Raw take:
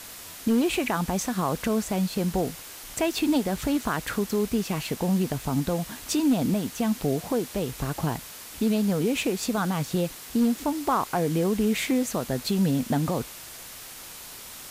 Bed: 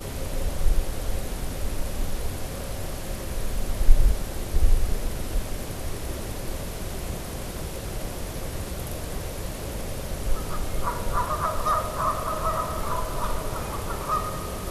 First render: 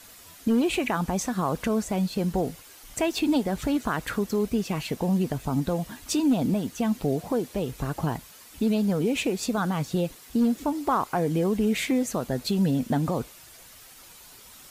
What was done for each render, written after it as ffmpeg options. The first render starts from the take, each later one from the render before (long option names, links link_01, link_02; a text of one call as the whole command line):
ffmpeg -i in.wav -af "afftdn=noise_reduction=9:noise_floor=-42" out.wav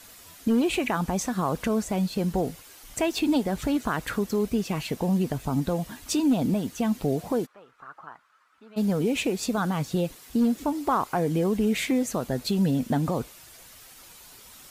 ffmpeg -i in.wav -filter_complex "[0:a]asplit=3[link_01][link_02][link_03];[link_01]afade=type=out:start_time=7.45:duration=0.02[link_04];[link_02]bandpass=frequency=1300:width_type=q:width=5,afade=type=in:start_time=7.45:duration=0.02,afade=type=out:start_time=8.76:duration=0.02[link_05];[link_03]afade=type=in:start_time=8.76:duration=0.02[link_06];[link_04][link_05][link_06]amix=inputs=3:normalize=0" out.wav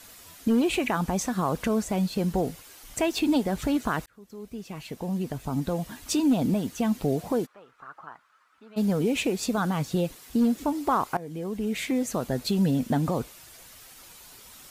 ffmpeg -i in.wav -filter_complex "[0:a]asplit=3[link_01][link_02][link_03];[link_01]atrim=end=4.06,asetpts=PTS-STARTPTS,afade=type=out:start_time=4.056:duration=0.004:curve=hsin[link_04];[link_02]atrim=start=4.06:end=11.17,asetpts=PTS-STARTPTS,afade=type=in:duration=2.01,afade=type=out:start_time=7.106:duration=0.004:curve=hsin:silence=0.149624[link_05];[link_03]atrim=start=11.17,asetpts=PTS-STARTPTS,afade=type=in:duration=1.04:silence=0.149624[link_06];[link_04][link_05][link_06]concat=n=3:v=0:a=1" out.wav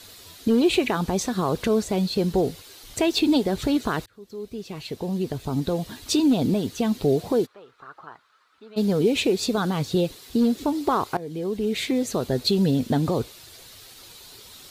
ffmpeg -i in.wav -af "equalizer=frequency=100:width_type=o:width=0.67:gain=8,equalizer=frequency=400:width_type=o:width=0.67:gain=8,equalizer=frequency=4000:width_type=o:width=0.67:gain=10" out.wav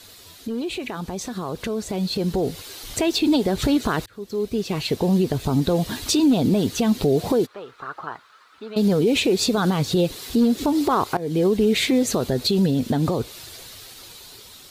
ffmpeg -i in.wav -af "alimiter=limit=-21dB:level=0:latency=1:release=167,dynaudnorm=framelen=690:gausssize=7:maxgain=10dB" out.wav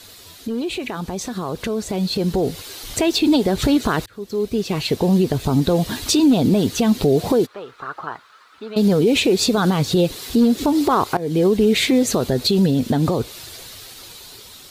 ffmpeg -i in.wav -af "volume=3dB" out.wav